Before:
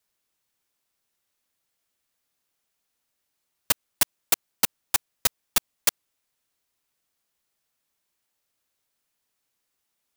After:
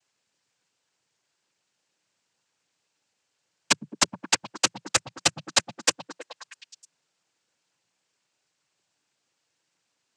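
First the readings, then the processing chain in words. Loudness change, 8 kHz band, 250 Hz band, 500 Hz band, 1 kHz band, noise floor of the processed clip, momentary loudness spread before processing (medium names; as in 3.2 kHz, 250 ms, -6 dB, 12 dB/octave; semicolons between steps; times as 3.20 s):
0.0 dB, +1.5 dB, +7.0 dB, +6.0 dB, +4.5 dB, -78 dBFS, 3 LU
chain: noise-vocoded speech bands 8; repeats whose band climbs or falls 106 ms, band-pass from 170 Hz, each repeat 0.7 oct, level -3 dB; trim +5.5 dB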